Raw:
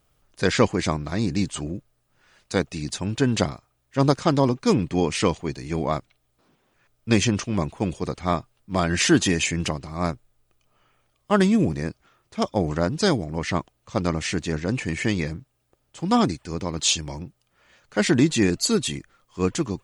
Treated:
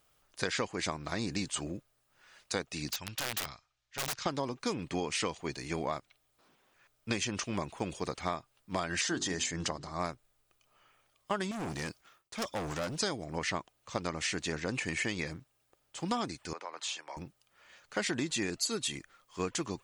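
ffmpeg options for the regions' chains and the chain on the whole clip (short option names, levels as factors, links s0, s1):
-filter_complex "[0:a]asettb=1/sr,asplit=3[s0][s1][s2];[s0]atrim=end=2.914[s3];[s1]atrim=start=2.91:end=4.26,asetpts=PTS-STARTPTS,afade=t=in:d=0.004:c=qsin,afade=t=out:st=1.346:d=0.004:c=qsin,lowpass=f=6200:w=0.5412,lowpass=f=6200:w=1.3066,equalizer=f=370:w=0.34:g=-14.5,aeval=exprs='(mod(17.8*val(0)+1,2)-1)/17.8':c=same[s4];[s2]atrim=start=4.256[s5];[s3][s4]acrossfade=d=0.004:c1=hsin:c2=qsin[s6];[s6][s5]acrossfade=d=0.004:c1=qsin:c2=hsin,asettb=1/sr,asplit=3[s7][s8][s9];[s7]atrim=end=9.014[s10];[s8]atrim=start=9.01:end=10,asetpts=PTS-STARTPTS,afade=t=in:d=0.004:c=qsin,afade=t=out:st=0.986:d=0.004:c=qsin,lowpass=f=8200:w=0.5412,lowpass=f=8200:w=1.3066,equalizer=f=2500:t=o:w=0.43:g=-11.5,bandreject=f=50:t=h:w=6,bandreject=f=100:t=h:w=6,bandreject=f=150:t=h:w=6,bandreject=f=200:t=h:w=6,bandreject=f=250:t=h:w=6,bandreject=f=300:t=h:w=6,bandreject=f=350:t=h:w=6,bandreject=f=400:t=h:w=6[s11];[s9]atrim=start=9.996[s12];[s10][s11]acrossfade=d=0.004:c1=hsin:c2=qsin[s13];[s13][s12]acrossfade=d=0.004:c1=qsin:c2=hsin,asettb=1/sr,asplit=3[s14][s15][s16];[s14]atrim=end=11.514[s17];[s15]atrim=start=11.51:end=12.99,asetpts=PTS-STARTPTS,afade=t=in:d=0.004:c=qsin,afade=t=out:st=1.476:d=0.004:c=qsin,agate=range=0.0224:threshold=0.00112:ratio=3:release=100:detection=peak,highshelf=f=4300:g=6,volume=18.8,asoftclip=hard,volume=0.0531[s18];[s16]atrim=start=12.986[s19];[s17][s18]acrossfade=d=0.004:c1=hsin:c2=qsin[s20];[s20][s19]acrossfade=d=0.004:c1=qsin:c2=hsin,asettb=1/sr,asplit=3[s21][s22][s23];[s21]atrim=end=16.534[s24];[s22]atrim=start=16.53:end=17.17,asetpts=PTS-STARTPTS,afade=t=in:d=0.004:c=qsin,afade=t=out:st=0.636:d=0.004:c=qsin,highpass=250,acrossover=split=550 2200:gain=0.0794 1 0.224[s25][s26][s27];[s25][s26][s27]amix=inputs=3:normalize=0,acompressor=threshold=0.02:ratio=3:attack=3.2:release=140:knee=1:detection=peak[s28];[s23]atrim=start=17.166[s29];[s24][s28]acrossfade=d=0.004:c1=hsin:c2=qsin[s30];[s30][s29]acrossfade=d=0.004:c1=qsin:c2=hsin,lowshelf=f=390:g=-11.5,acompressor=threshold=0.0316:ratio=6"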